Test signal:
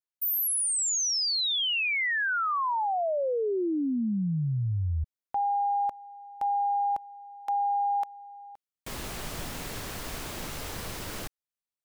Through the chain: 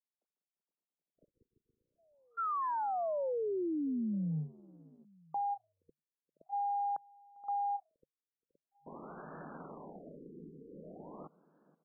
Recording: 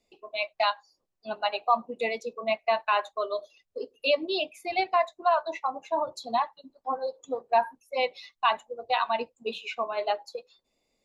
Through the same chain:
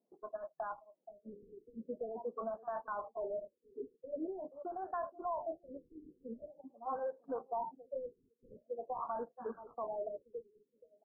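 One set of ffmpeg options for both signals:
-filter_complex "[0:a]tiltshelf=f=1500:g=-5,asplit=2[s0][s1];[s1]adelay=474,lowpass=f=2300:p=1,volume=0.0794,asplit=2[s2][s3];[s3]adelay=474,lowpass=f=2300:p=1,volume=0.35[s4];[s0][s2][s4]amix=inputs=3:normalize=0,acompressor=threshold=0.0224:ratio=10:attack=0.18:release=28:knee=6:detection=peak,afftfilt=real='re*between(b*sr/4096,140,5200)':imag='im*between(b*sr/4096,140,5200)':win_size=4096:overlap=0.75,adynamicsmooth=sensitivity=7:basefreq=690,afftfilt=real='re*lt(b*sr/1024,470*pow(1800/470,0.5+0.5*sin(2*PI*0.45*pts/sr)))':imag='im*lt(b*sr/1024,470*pow(1800/470,0.5+0.5*sin(2*PI*0.45*pts/sr)))':win_size=1024:overlap=0.75,volume=1.26"

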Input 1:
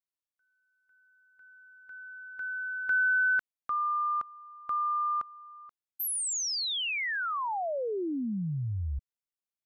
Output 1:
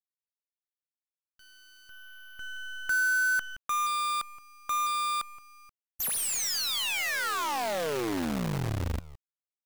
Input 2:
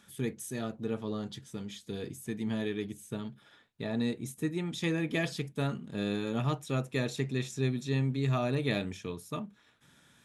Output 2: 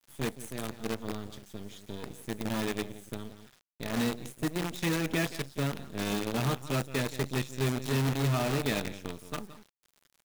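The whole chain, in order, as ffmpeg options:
-af "aecho=1:1:172:0.282,acrusher=bits=6:dc=4:mix=0:aa=0.000001"

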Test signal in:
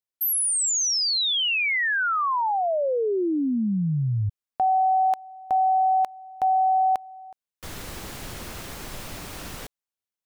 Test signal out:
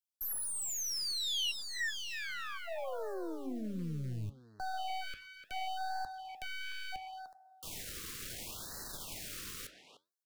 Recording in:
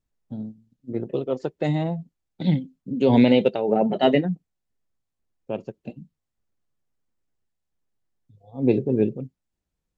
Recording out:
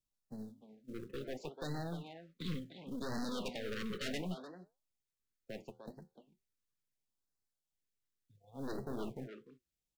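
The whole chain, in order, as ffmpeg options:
-filter_complex "[0:a]aeval=exprs='(tanh(17.8*val(0)+0.65)-tanh(0.65))/17.8':c=same,highshelf=f=2000:g=12,acrossover=split=160|1600[s0][s1][s2];[s1]acompressor=threshold=0.0447:ratio=5:attack=0.42:release=37:knee=2.83:detection=peak[s3];[s0][s3][s2]amix=inputs=3:normalize=0,acrusher=bits=6:mode=log:mix=0:aa=0.000001,acrossover=split=2700[s4][s5];[s5]acompressor=threshold=0.0398:ratio=4:attack=1:release=60[s6];[s4][s6]amix=inputs=2:normalize=0,flanger=delay=6.1:depth=6.4:regen=-78:speed=1.3:shape=sinusoidal,asplit=2[s7][s8];[s8]adelay=300,highpass=300,lowpass=3400,asoftclip=type=hard:threshold=0.0355,volume=0.447[s9];[s7][s9]amix=inputs=2:normalize=0,afftfilt=real='re*(1-between(b*sr/1024,720*pow(2800/720,0.5+0.5*sin(2*PI*0.71*pts/sr))/1.41,720*pow(2800/720,0.5+0.5*sin(2*PI*0.71*pts/sr))*1.41))':imag='im*(1-between(b*sr/1024,720*pow(2800/720,0.5+0.5*sin(2*PI*0.71*pts/sr))/1.41,720*pow(2800/720,0.5+0.5*sin(2*PI*0.71*pts/sr))*1.41))':win_size=1024:overlap=0.75,volume=0.501"

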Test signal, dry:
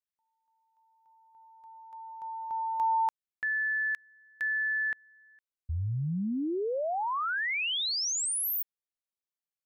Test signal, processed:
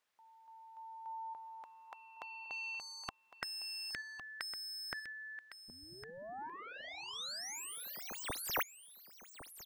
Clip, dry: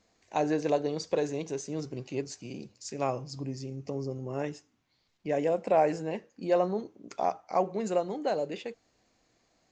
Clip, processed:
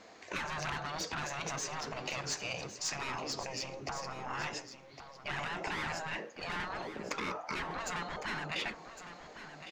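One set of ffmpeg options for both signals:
-filter_complex "[0:a]asplit=2[s0][s1];[s1]highpass=f=720:p=1,volume=20,asoftclip=type=tanh:threshold=0.211[s2];[s0][s2]amix=inputs=2:normalize=0,lowpass=f=1600:p=1,volume=0.501,acompressor=threshold=0.0562:ratio=2.5:attack=11:release=338:knee=1:detection=rms,afftfilt=real='re*lt(hypot(re,im),0.0794)':imag='im*lt(hypot(re,im),0.0794)':win_size=1024:overlap=0.75,asplit=2[s3][s4];[s4]aecho=0:1:1108:0.266[s5];[s3][s5]amix=inputs=2:normalize=0,volume=1.12"

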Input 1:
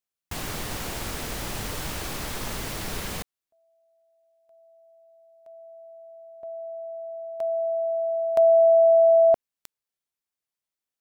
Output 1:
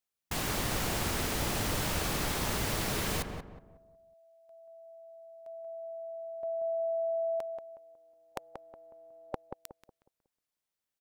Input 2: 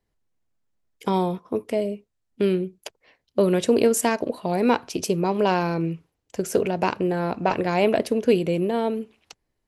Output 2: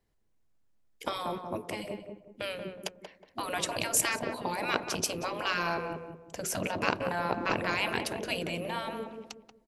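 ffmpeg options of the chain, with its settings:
-filter_complex "[0:a]afftfilt=real='re*lt(hypot(re,im),0.251)':imag='im*lt(hypot(re,im),0.251)':win_size=1024:overlap=0.75,asplit=2[s0][s1];[s1]adelay=183,lowpass=f=1200:p=1,volume=0.562,asplit=2[s2][s3];[s3]adelay=183,lowpass=f=1200:p=1,volume=0.37,asplit=2[s4][s5];[s5]adelay=183,lowpass=f=1200:p=1,volume=0.37,asplit=2[s6][s7];[s7]adelay=183,lowpass=f=1200:p=1,volume=0.37,asplit=2[s8][s9];[s9]adelay=183,lowpass=f=1200:p=1,volume=0.37[s10];[s2][s4][s6][s8][s10]amix=inputs=5:normalize=0[s11];[s0][s11]amix=inputs=2:normalize=0"

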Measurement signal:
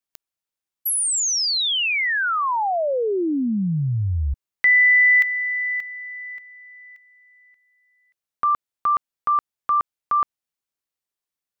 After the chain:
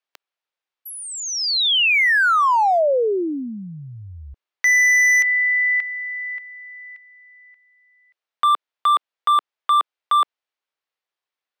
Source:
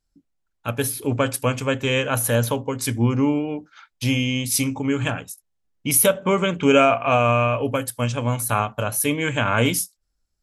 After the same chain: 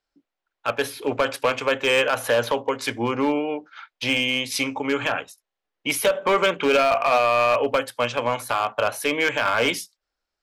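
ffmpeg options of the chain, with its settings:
-filter_complex "[0:a]acrossover=split=370 4500:gain=0.0891 1 0.112[s0][s1][s2];[s0][s1][s2]amix=inputs=3:normalize=0,alimiter=limit=0.2:level=0:latency=1:release=59,asoftclip=type=hard:threshold=0.106,volume=2"

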